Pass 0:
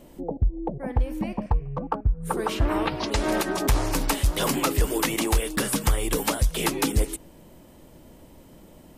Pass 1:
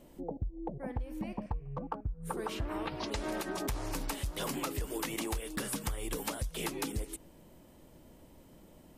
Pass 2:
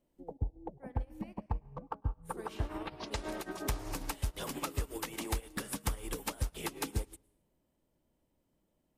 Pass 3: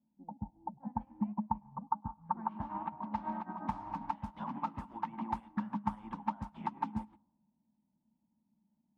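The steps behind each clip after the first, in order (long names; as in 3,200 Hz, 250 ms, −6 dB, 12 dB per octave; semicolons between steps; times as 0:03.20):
downward compressor 5 to 1, threshold −25 dBFS, peak gain reduction 8.5 dB; level −7.5 dB
convolution reverb RT60 1.0 s, pre-delay 99 ms, DRR 11.5 dB; expander for the loud parts 2.5 to 1, over −47 dBFS; level +3.5 dB
low-pass that shuts in the quiet parts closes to 460 Hz, open at −29.5 dBFS; pair of resonant band-passes 440 Hz, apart 2.1 octaves; level +11.5 dB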